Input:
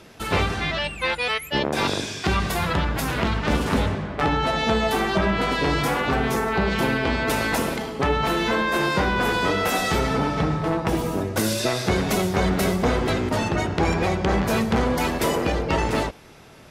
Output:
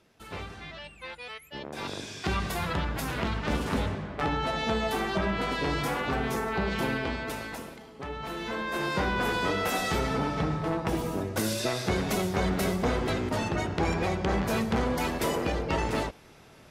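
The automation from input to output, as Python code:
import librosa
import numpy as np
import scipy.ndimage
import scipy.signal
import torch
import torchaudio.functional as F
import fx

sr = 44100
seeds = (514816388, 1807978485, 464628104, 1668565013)

y = fx.gain(x, sr, db=fx.line((1.56, -17.0), (2.27, -7.0), (6.97, -7.0), (7.79, -19.0), (9.04, -6.0)))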